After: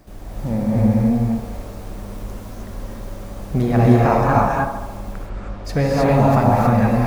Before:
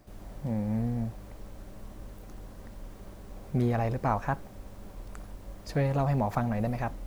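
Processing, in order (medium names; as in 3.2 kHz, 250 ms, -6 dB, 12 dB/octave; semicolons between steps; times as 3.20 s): 4.97–5.65 s: low-pass 3.4 kHz 12 dB/octave; feedback echo behind a band-pass 74 ms, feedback 64%, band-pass 670 Hz, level -6.5 dB; gated-style reverb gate 340 ms rising, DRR -4 dB; trim +8 dB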